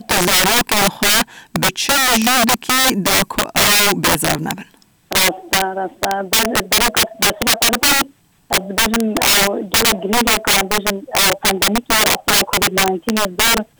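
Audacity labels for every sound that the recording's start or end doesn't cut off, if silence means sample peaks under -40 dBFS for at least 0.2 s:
5.110000	8.110000	sound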